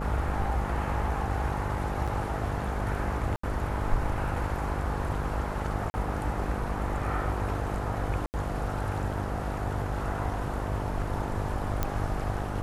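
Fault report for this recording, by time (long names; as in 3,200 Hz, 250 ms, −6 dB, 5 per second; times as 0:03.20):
mains buzz 50 Hz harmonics 14 −34 dBFS
0:02.07–0:02.08: drop-out 5.9 ms
0:03.36–0:03.43: drop-out 74 ms
0:05.90–0:05.94: drop-out 40 ms
0:08.26–0:08.34: drop-out 79 ms
0:11.83: click −13 dBFS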